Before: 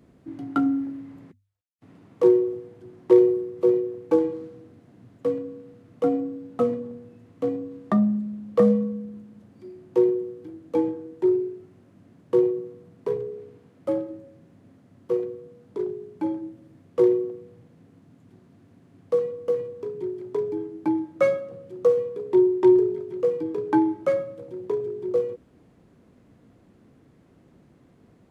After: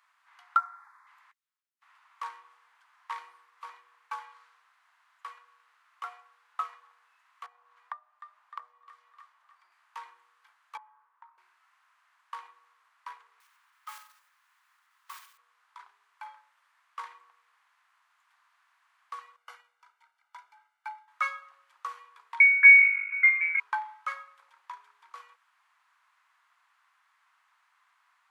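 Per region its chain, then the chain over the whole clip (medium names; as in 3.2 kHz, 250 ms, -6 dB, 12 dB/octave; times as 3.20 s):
0.56–1.07 s: peaking EQ 960 Hz +4.5 dB 0.97 oct + static phaser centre 1.2 kHz, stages 4
7.46–9.72 s: feedback echo behind a high-pass 305 ms, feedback 41%, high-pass 1.9 kHz, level -6.5 dB + compression 16:1, threshold -32 dBFS + tilt shelf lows +7 dB, about 1.2 kHz
10.77–11.38 s: band-pass filter 1 kHz, Q 2.4 + compression 2:1, threshold -48 dBFS
13.40–15.39 s: block-companded coder 5-bit + peaking EQ 540 Hz -14.5 dB 0.59 oct
19.36–21.08 s: comb 1.4 ms, depth 85% + upward expansion, over -46 dBFS
22.40–23.60 s: companding laws mixed up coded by A + frequency inversion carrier 2.6 kHz + band-stop 880 Hz, Q 7.2
whole clip: steep high-pass 1 kHz 48 dB/octave; treble shelf 2.4 kHz -11.5 dB; trim +7 dB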